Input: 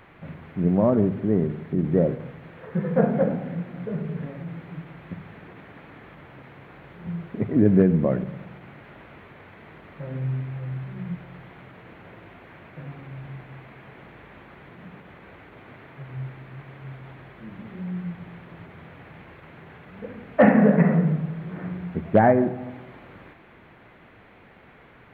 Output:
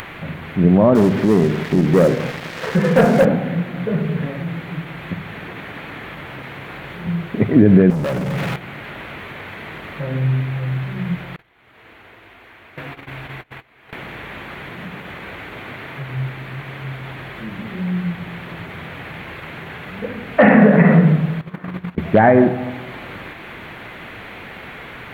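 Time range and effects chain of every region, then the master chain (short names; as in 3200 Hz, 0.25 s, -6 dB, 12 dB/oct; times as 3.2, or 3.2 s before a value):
0.95–3.25 low shelf 99 Hz -11.5 dB + sample leveller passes 2 + compressor 1.5:1, threshold -29 dBFS
7.9–8.56 compressor, threshold -34 dBFS + comb 7.2 ms, depth 39% + sample leveller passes 3
11.36–13.93 gate -41 dBFS, range -28 dB + bell 160 Hz -13 dB 0.75 oct + notch 560 Hz, Q 14
21.41–21.98 gate -32 dBFS, range -19 dB + bell 1100 Hz +6.5 dB 0.39 oct + negative-ratio compressor -35 dBFS, ratio -0.5
whole clip: high shelf 2100 Hz +12 dB; upward compressor, threshold -37 dBFS; maximiser +10 dB; gain -1 dB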